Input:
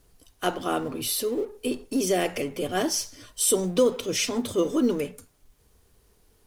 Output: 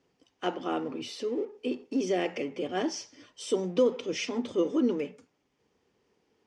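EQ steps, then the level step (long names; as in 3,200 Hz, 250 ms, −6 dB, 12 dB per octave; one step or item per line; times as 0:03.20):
loudspeaker in its box 250–6,000 Hz, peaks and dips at 420 Hz −3 dB, 650 Hz −7 dB, 1,100 Hz −5 dB, 1,500 Hz −6 dB, 4,000 Hz −7 dB
high-shelf EQ 3,400 Hz −10 dB
0.0 dB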